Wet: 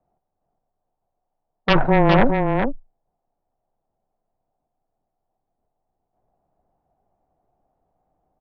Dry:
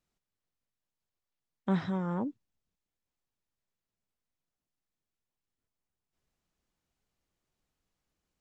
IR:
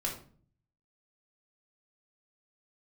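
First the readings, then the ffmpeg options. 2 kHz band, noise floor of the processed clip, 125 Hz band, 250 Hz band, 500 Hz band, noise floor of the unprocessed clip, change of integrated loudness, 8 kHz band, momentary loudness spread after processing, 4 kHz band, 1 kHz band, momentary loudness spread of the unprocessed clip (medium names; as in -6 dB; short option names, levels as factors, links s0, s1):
+24.0 dB, -79 dBFS, +15.0 dB, +12.5 dB, +20.5 dB, under -85 dBFS, +15.0 dB, no reading, 11 LU, +24.5 dB, +21.0 dB, 8 LU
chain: -af "lowpass=f=750:t=q:w=5.9,aeval=exprs='0.237*(cos(1*acos(clip(val(0)/0.237,-1,1)))-cos(1*PI/2))+0.075*(cos(3*acos(clip(val(0)/0.237,-1,1)))-cos(3*PI/2))+0.0668*(cos(5*acos(clip(val(0)/0.237,-1,1)))-cos(5*PI/2))+0.0944*(cos(8*acos(clip(val(0)/0.237,-1,1)))-cos(8*PI/2))':c=same,afreqshift=-14,aecho=1:1:410:0.562,volume=2.24"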